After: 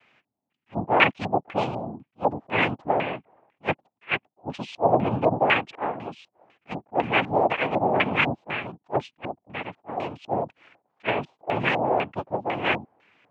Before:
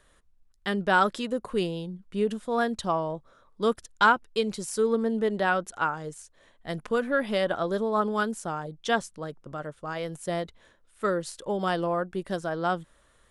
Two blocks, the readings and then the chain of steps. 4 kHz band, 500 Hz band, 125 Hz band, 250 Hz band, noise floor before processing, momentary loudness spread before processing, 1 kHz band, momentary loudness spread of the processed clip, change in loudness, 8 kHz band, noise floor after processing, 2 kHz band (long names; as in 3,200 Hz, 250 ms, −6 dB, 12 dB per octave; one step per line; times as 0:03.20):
+3.0 dB, +1.0 dB, +4.0 dB, −0.5 dB, −63 dBFS, 14 LU, +3.0 dB, 14 LU, +2.5 dB, below −15 dB, −83 dBFS, +3.5 dB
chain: cochlear-implant simulation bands 4
auto-filter low-pass square 2 Hz 750–2,600 Hz
level that may rise only so fast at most 480 dB per second
level +1 dB